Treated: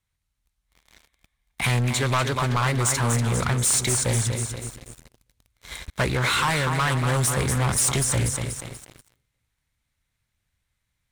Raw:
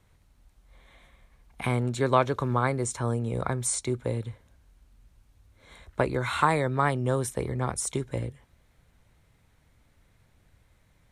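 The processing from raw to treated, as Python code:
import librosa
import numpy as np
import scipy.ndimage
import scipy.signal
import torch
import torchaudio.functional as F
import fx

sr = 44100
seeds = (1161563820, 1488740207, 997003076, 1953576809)

y = fx.echo_feedback(x, sr, ms=241, feedback_pct=48, wet_db=-10)
y = fx.rider(y, sr, range_db=3, speed_s=0.5)
y = fx.tone_stack(y, sr, knobs='5-5-5')
y = fx.leveller(y, sr, passes=5)
y = fx.doppler_dist(y, sr, depth_ms=0.21)
y = y * librosa.db_to_amplitude(5.5)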